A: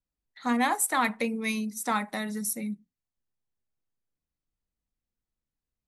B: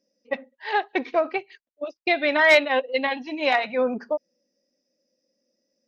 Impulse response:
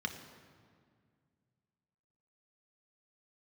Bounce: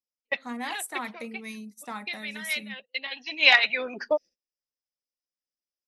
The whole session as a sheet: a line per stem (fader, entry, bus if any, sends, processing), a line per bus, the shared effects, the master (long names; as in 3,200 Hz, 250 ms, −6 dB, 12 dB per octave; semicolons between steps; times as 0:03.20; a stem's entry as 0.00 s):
−9.5 dB, 0.00 s, no send, no processing
+2.0 dB, 0.00 s, no send, meter weighting curve D; noise gate −40 dBFS, range −6 dB; harmonic and percussive parts rebalanced harmonic −13 dB; automatic ducking −19 dB, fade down 1.15 s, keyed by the first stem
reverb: not used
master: noise gate −45 dBFS, range −21 dB